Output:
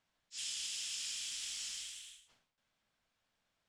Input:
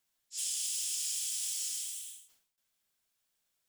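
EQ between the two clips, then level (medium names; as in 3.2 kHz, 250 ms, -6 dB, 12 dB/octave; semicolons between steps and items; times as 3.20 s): tape spacing loss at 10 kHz 24 dB; peaking EQ 380 Hz -7.5 dB 0.32 oct; +9.5 dB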